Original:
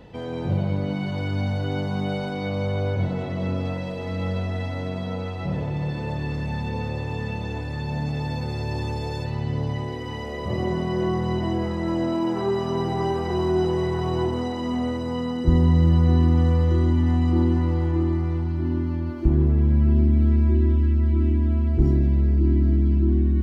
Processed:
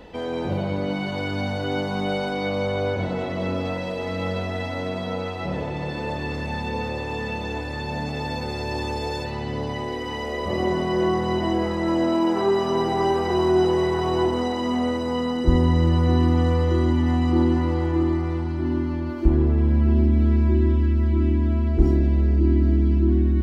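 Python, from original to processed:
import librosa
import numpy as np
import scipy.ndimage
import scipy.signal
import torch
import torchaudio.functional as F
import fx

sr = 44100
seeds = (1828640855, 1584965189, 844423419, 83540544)

y = fx.peak_eq(x, sr, hz=120.0, db=-14.0, octaves=1.1)
y = F.gain(torch.from_numpy(y), 5.0).numpy()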